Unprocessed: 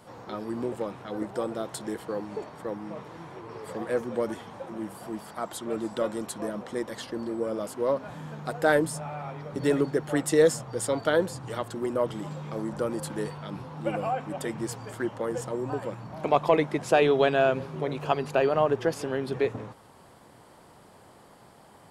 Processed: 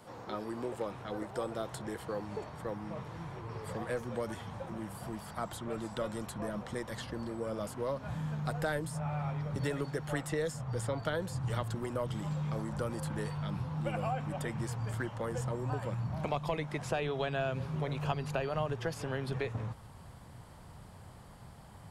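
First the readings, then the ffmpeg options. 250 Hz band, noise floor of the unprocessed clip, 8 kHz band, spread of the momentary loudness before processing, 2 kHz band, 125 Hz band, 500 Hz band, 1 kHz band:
−7.5 dB, −54 dBFS, −9.0 dB, 15 LU, −7.5 dB, +2.0 dB, −11.0 dB, −8.0 dB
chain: -filter_complex "[0:a]acrossover=split=420|2800[link_01][link_02][link_03];[link_01]acompressor=threshold=-38dB:ratio=4[link_04];[link_02]acompressor=threshold=-30dB:ratio=4[link_05];[link_03]acompressor=threshold=-45dB:ratio=4[link_06];[link_04][link_05][link_06]amix=inputs=3:normalize=0,asubboost=boost=7.5:cutoff=120,volume=-2dB"

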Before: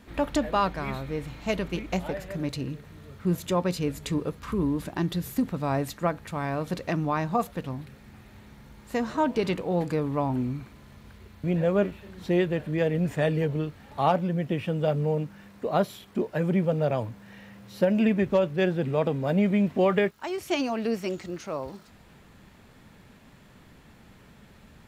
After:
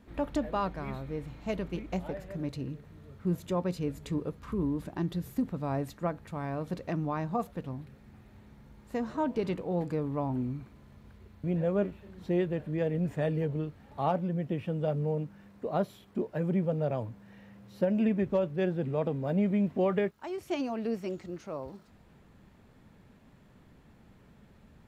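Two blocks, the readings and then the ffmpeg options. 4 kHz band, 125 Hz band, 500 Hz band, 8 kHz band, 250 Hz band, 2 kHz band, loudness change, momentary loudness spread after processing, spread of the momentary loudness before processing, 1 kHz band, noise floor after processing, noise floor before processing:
−11.0 dB, −4.0 dB, −5.0 dB, can't be measured, −4.5 dB, −9.5 dB, −5.0 dB, 11 LU, 11 LU, −7.0 dB, −59 dBFS, −54 dBFS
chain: -af "tiltshelf=frequency=1200:gain=4,volume=-8dB"

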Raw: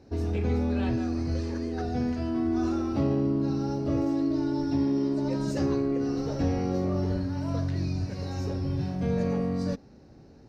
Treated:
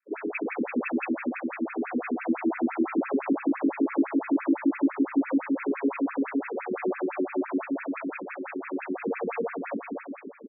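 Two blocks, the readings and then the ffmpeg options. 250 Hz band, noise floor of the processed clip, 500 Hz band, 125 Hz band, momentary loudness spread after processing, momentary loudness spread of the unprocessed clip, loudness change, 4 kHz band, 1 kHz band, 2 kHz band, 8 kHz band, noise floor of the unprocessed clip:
+0.5 dB, −42 dBFS, 0.0 dB, below −20 dB, 8 LU, 5 LU, −0.5 dB, below −40 dB, +3.5 dB, +10.0 dB, can't be measured, −52 dBFS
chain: -filter_complex "[0:a]aexciter=amount=14.1:drive=8.8:freq=2800,highpass=110,asplit=2[link_01][link_02];[link_02]alimiter=limit=-24dB:level=0:latency=1,volume=-1.5dB[link_03];[link_01][link_03]amix=inputs=2:normalize=0,afftfilt=real='re*gte(hypot(re,im),0.0112)':imag='im*gte(hypot(re,im),0.0112)':win_size=1024:overlap=0.75,aeval=exprs='0.224*(cos(1*acos(clip(val(0)/0.224,-1,1)))-cos(1*PI/2))+0.0631*(cos(5*acos(clip(val(0)/0.224,-1,1)))-cos(5*PI/2))':channel_layout=same,asplit=2[link_04][link_05];[link_05]aecho=0:1:260|442|569.4|658.6|721:0.631|0.398|0.251|0.158|0.1[link_06];[link_04][link_06]amix=inputs=2:normalize=0,afftfilt=real='re*between(b*sr/1024,290*pow(1900/290,0.5+0.5*sin(2*PI*5.9*pts/sr))/1.41,290*pow(1900/290,0.5+0.5*sin(2*PI*5.9*pts/sr))*1.41)':imag='im*between(b*sr/1024,290*pow(1900/290,0.5+0.5*sin(2*PI*5.9*pts/sr))/1.41,290*pow(1900/290,0.5+0.5*sin(2*PI*5.9*pts/sr))*1.41)':win_size=1024:overlap=0.75"

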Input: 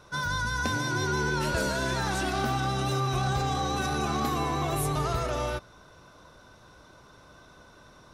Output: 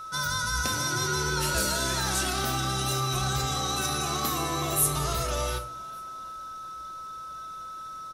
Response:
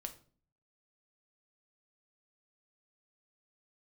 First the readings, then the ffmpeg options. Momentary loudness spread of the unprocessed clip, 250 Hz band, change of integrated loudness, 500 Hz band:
2 LU, −3.0 dB, +1.5 dB, −2.0 dB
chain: -filter_complex "[0:a]asplit=4[link_01][link_02][link_03][link_04];[link_02]adelay=386,afreqshift=77,volume=-24dB[link_05];[link_03]adelay=772,afreqshift=154,volume=-29.4dB[link_06];[link_04]adelay=1158,afreqshift=231,volume=-34.7dB[link_07];[link_01][link_05][link_06][link_07]amix=inputs=4:normalize=0[link_08];[1:a]atrim=start_sample=2205[link_09];[link_08][link_09]afir=irnorm=-1:irlink=0,aeval=exprs='val(0)+0.0112*sin(2*PI*1300*n/s)':channel_layout=same,crystalizer=i=4:c=0"

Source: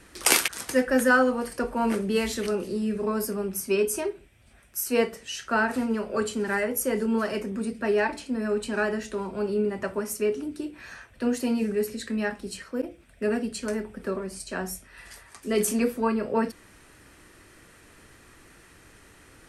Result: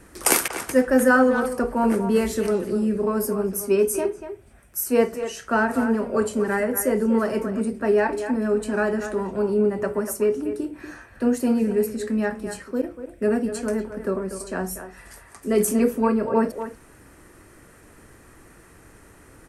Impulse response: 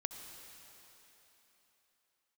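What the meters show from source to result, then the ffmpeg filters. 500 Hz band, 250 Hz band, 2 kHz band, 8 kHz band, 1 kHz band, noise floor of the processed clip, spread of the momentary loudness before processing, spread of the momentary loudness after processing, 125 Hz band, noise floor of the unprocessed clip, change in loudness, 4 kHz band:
+5.0 dB, +5.0 dB, +1.0 dB, +2.0 dB, +3.5 dB, −51 dBFS, 12 LU, 11 LU, +5.0 dB, −54 dBFS, +4.0 dB, −4.0 dB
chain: -filter_complex "[0:a]equalizer=frequency=3500:width_type=o:width=1.8:gain=-10.5,asplit=2[link_01][link_02];[link_02]adelay=240,highpass=300,lowpass=3400,asoftclip=type=hard:threshold=-16dB,volume=-9dB[link_03];[link_01][link_03]amix=inputs=2:normalize=0,volume=5dB"

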